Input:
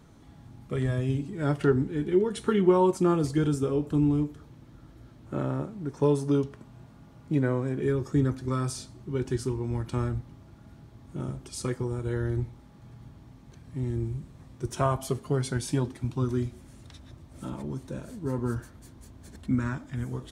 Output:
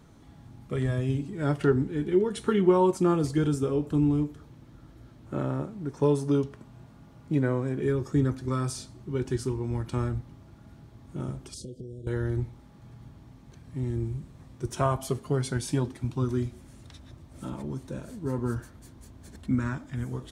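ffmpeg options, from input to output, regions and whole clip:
-filter_complex "[0:a]asettb=1/sr,asplit=3[a][b][c];[a]atrim=end=11.544[d];[b]atrim=start=11.54:end=12.07,asetpts=PTS-STARTPTS,afade=t=in:d=0.004:c=qsin,afade=t=out:st=0.526:d=0.004:c=qsin,highshelf=f=6.6k:g=-10,acompressor=threshold=-37dB:ratio=5:attack=3.2:release=140:knee=1:detection=peak,asuperstop=centerf=1400:order=12:qfactor=0.55[e];[c]atrim=start=12.066[f];[d][e]acrossfade=d=0.004:c1=hsin:c2=qsin[g];[g][f]acrossfade=d=0.004:c1=qsin:c2=hsin"

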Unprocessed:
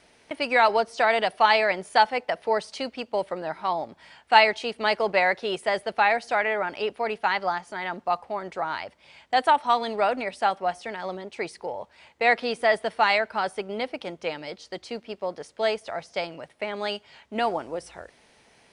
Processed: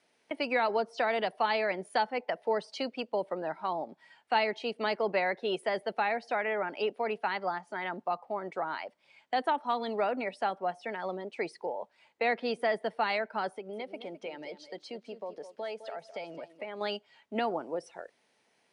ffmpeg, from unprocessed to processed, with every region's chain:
-filter_complex "[0:a]asettb=1/sr,asplit=3[a][b][c];[a]atrim=end=13.524[d];[b]atrim=start=13.52:end=16.81,asetpts=PTS-STARTPTS,afade=t=in:d=0.004:c=qsin,afade=t=out:st=3.286:d=0.004:c=qsin,acompressor=threshold=-37dB:ratio=2.5:attack=3.2:release=140:knee=1:detection=peak,aecho=1:1:210|420|630:0.316|0.0885|0.0248,atrim=end_sample=145089[e];[c]atrim=start=16.806[f];[d][e]acrossfade=d=0.004:c1=hsin:c2=qsin[g];[g][f]acrossfade=d=0.004:c1=qsin:c2=hsin,highpass=180,afftdn=nr=12:nf=-41,acrossover=split=420[h][i];[i]acompressor=threshold=-34dB:ratio=2[j];[h][j]amix=inputs=2:normalize=0,volume=-1dB"

